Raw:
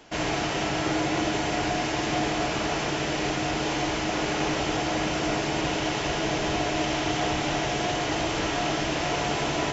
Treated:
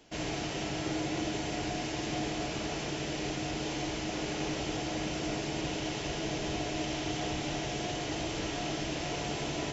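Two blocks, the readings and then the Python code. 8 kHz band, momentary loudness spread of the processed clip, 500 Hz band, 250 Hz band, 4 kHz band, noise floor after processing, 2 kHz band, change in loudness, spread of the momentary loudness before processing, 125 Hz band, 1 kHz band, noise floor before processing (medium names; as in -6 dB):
no reading, 1 LU, -8.0 dB, -6.5 dB, -7.0 dB, -37 dBFS, -10.0 dB, -8.0 dB, 1 LU, -5.5 dB, -11.0 dB, -29 dBFS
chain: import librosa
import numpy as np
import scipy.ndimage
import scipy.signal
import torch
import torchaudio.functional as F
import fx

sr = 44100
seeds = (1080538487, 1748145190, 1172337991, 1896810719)

y = fx.peak_eq(x, sr, hz=1200.0, db=-7.5, octaves=1.8)
y = y * librosa.db_to_amplitude(-5.5)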